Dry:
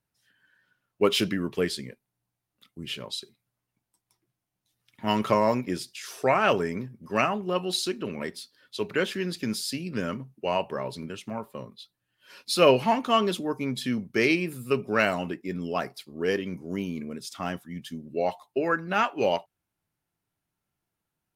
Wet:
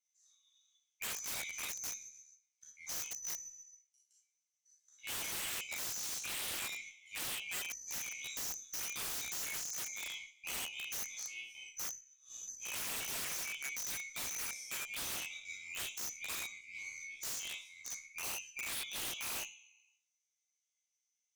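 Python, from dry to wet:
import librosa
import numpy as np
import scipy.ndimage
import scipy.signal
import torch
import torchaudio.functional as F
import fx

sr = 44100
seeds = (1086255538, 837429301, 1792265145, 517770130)

y = fx.band_swap(x, sr, width_hz=2000)
y = fx.bandpass_q(y, sr, hz=6100.0, q=13.0)
y = fx.doubler(y, sr, ms=15.0, db=-3)
y = fx.echo_feedback(y, sr, ms=133, feedback_pct=56, wet_db=-24)
y = fx.rev_schroeder(y, sr, rt60_s=0.37, comb_ms=27, drr_db=-3.0)
y = fx.over_compress(y, sr, threshold_db=-44.0, ratio=-1.0)
y = (np.mod(10.0 ** (40.5 / 20.0) * y + 1.0, 2.0) - 1.0) / 10.0 ** (40.5 / 20.0)
y = fx.cheby_harmonics(y, sr, harmonics=(6,), levels_db=(-32,), full_scale_db=-40.5)
y = fx.end_taper(y, sr, db_per_s=200.0)
y = F.gain(torch.from_numpy(y), 6.0).numpy()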